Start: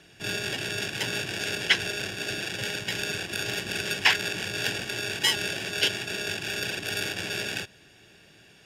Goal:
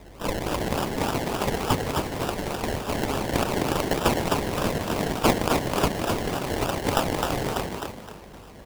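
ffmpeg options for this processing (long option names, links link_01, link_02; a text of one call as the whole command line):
ffmpeg -i in.wav -filter_complex "[0:a]highshelf=frequency=11000:gain=10,asplit=2[link_01][link_02];[link_02]acompressor=threshold=-47dB:ratio=6,volume=0.5dB[link_03];[link_01][link_03]amix=inputs=2:normalize=0,aeval=exprs='val(0)+0.00501*(sin(2*PI*50*n/s)+sin(2*PI*2*50*n/s)/2+sin(2*PI*3*50*n/s)/3+sin(2*PI*4*50*n/s)/4+sin(2*PI*5*50*n/s)/5)':channel_layout=same,flanger=delay=2.6:depth=2.4:regen=47:speed=0.32:shape=triangular,acrossover=split=100|3700[link_04][link_05][link_06];[link_06]aexciter=amount=5.8:drive=7.2:freq=7800[link_07];[link_04][link_05][link_07]amix=inputs=3:normalize=0,acrusher=samples=29:mix=1:aa=0.000001:lfo=1:lforange=17.4:lforate=3.4,asplit=5[link_08][link_09][link_10][link_11][link_12];[link_09]adelay=258,afreqshift=44,volume=-4dB[link_13];[link_10]adelay=516,afreqshift=88,volume=-13.4dB[link_14];[link_11]adelay=774,afreqshift=132,volume=-22.7dB[link_15];[link_12]adelay=1032,afreqshift=176,volume=-32.1dB[link_16];[link_08][link_13][link_14][link_15][link_16]amix=inputs=5:normalize=0" out.wav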